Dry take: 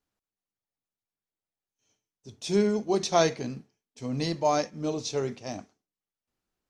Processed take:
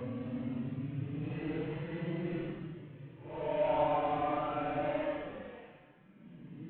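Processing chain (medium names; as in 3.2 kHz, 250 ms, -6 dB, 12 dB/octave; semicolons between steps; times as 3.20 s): CVSD coder 16 kbps; Paulstretch 9.3×, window 0.05 s, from 4.06 s; bass shelf 170 Hz +3 dB; trim -8.5 dB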